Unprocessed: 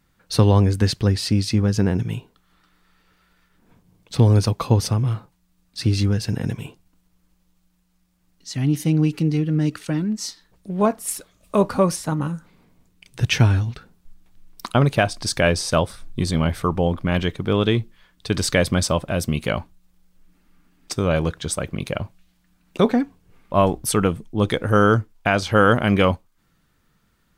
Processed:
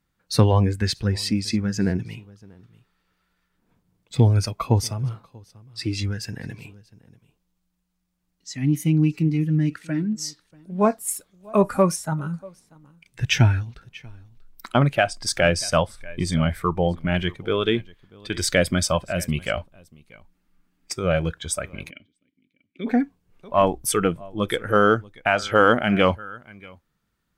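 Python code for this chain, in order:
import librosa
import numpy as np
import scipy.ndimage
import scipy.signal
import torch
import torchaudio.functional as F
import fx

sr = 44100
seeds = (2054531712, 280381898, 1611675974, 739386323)

p1 = x + fx.echo_single(x, sr, ms=638, db=-18.0, dry=0)
p2 = fx.noise_reduce_blind(p1, sr, reduce_db=10)
p3 = fx.vowel_filter(p2, sr, vowel='i', at=(21.89, 22.86), fade=0.02)
y = fx.cheby_harmonics(p3, sr, harmonics=(4, 6), levels_db=(-36, -38), full_scale_db=-4.5)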